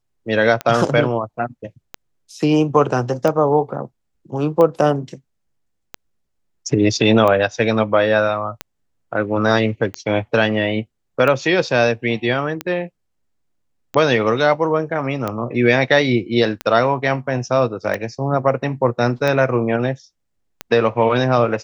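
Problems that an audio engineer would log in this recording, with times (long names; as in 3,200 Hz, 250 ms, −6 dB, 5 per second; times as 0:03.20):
scratch tick 45 rpm −9 dBFS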